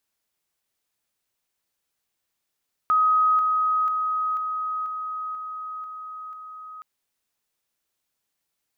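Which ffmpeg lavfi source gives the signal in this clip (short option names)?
-f lavfi -i "aevalsrc='pow(10,(-16-3*floor(t/0.49))/20)*sin(2*PI*1260*t)':d=3.92:s=44100"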